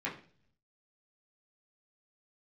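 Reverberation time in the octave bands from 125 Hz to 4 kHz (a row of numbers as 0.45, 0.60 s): 1.0, 0.70, 0.50, 0.40, 0.40, 0.50 s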